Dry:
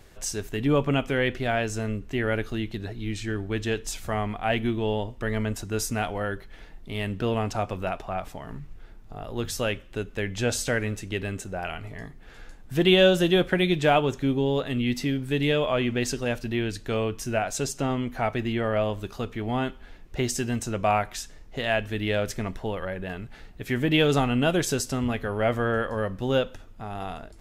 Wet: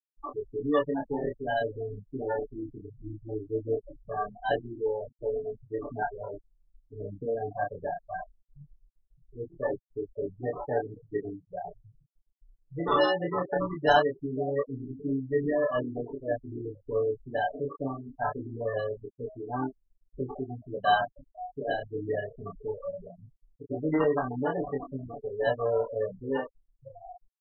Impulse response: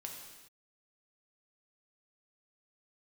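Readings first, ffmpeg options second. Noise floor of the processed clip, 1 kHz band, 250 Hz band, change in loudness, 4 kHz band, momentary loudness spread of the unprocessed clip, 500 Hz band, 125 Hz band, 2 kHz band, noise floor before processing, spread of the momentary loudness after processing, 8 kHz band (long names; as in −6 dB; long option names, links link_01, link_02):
−74 dBFS, −1.0 dB, −8.0 dB, −5.0 dB, −11.5 dB, 13 LU, −3.0 dB, −11.0 dB, −6.5 dB, −47 dBFS, 14 LU, below −35 dB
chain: -filter_complex "[0:a]acrossover=split=570|1600[link_01][link_02][link_03];[link_01]alimiter=limit=-20dB:level=0:latency=1:release=411[link_04];[link_04][link_02][link_03]amix=inputs=3:normalize=0,asplit=2[link_05][link_06];[link_06]adelay=507.3,volume=-14dB,highshelf=frequency=4000:gain=-11.4[link_07];[link_05][link_07]amix=inputs=2:normalize=0,acrusher=samples=19:mix=1:aa=0.000001,afftfilt=real='re*gte(hypot(re,im),0.126)':imag='im*gte(hypot(re,im),0.126)':win_size=1024:overlap=0.75,flanger=delay=22.5:depth=7.8:speed=0.2,bass=frequency=250:gain=-11,treble=frequency=4000:gain=-7,aecho=1:1:6.9:0.99"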